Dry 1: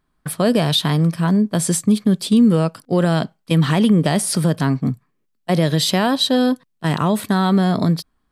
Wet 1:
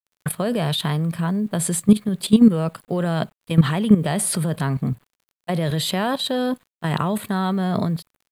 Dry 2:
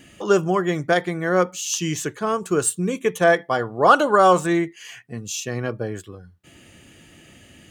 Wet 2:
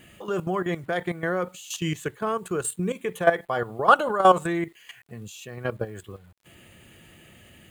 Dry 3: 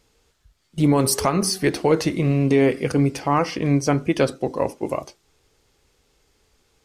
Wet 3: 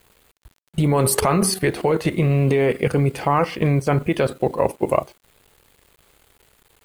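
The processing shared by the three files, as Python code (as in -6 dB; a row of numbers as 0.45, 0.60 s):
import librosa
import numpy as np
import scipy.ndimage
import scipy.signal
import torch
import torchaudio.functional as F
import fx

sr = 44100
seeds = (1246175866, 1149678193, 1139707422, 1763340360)

y = fx.peak_eq(x, sr, hz=280.0, db=-8.0, octaves=0.32)
y = fx.level_steps(y, sr, step_db=13)
y = fx.quant_dither(y, sr, seeds[0], bits=10, dither='none')
y = fx.peak_eq(y, sr, hz=5600.0, db=-12.5, octaves=0.53)
y = fx.dmg_crackle(y, sr, seeds[1], per_s=35.0, level_db=-52.0)
y = librosa.util.normalize(y) * 10.0 ** (-3 / 20.0)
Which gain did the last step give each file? +4.5, +1.0, +9.0 dB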